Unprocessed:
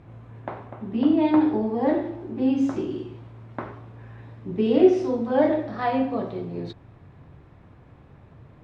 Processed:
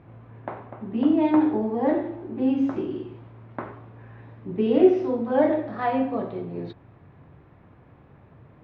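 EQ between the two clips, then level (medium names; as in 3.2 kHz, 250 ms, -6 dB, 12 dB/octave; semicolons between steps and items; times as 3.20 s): low-pass 2.9 kHz 12 dB/octave; bass shelf 69 Hz -9.5 dB; 0.0 dB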